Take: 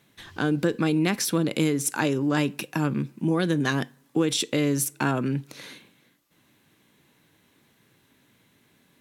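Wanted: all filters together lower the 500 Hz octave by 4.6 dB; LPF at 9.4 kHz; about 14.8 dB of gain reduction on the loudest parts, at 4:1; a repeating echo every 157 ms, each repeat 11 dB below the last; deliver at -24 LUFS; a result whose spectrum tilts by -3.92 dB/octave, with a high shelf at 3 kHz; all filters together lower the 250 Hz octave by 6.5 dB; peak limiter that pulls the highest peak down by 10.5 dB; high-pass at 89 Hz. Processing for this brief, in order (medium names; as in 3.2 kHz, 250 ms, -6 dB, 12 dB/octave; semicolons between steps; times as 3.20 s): high-pass 89 Hz; low-pass 9.4 kHz; peaking EQ 250 Hz -8 dB; peaking EQ 500 Hz -3 dB; treble shelf 3 kHz +3.5 dB; compression 4:1, threshold -40 dBFS; peak limiter -31.5 dBFS; feedback delay 157 ms, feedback 28%, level -11 dB; trim +19.5 dB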